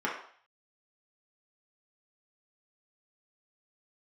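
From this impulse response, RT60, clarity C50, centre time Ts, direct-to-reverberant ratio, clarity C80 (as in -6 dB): 0.50 s, 5.0 dB, 35 ms, -5.0 dB, 9.0 dB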